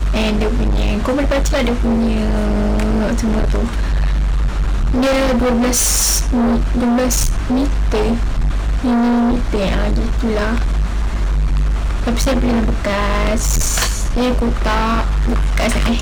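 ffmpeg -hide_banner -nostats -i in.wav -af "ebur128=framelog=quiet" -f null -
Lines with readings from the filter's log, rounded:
Integrated loudness:
  I:         -16.9 LUFS
  Threshold: -26.9 LUFS
Loudness range:
  LRA:         2.8 LU
  Threshold: -36.9 LUFS
  LRA low:   -18.1 LUFS
  LRA high:  -15.2 LUFS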